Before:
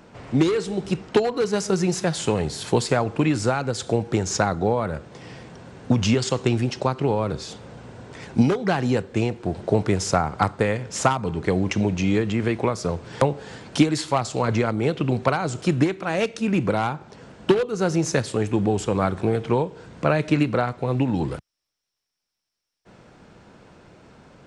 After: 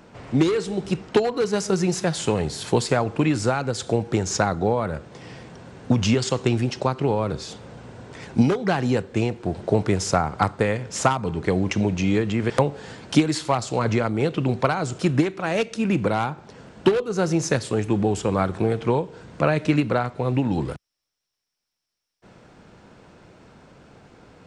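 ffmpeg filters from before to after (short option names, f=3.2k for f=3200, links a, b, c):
-filter_complex "[0:a]asplit=2[a][b];[a]atrim=end=12.502[c];[b]atrim=start=13.128[d];[c][d]acrossfade=d=0.004:c1=hsin:c2=hsin"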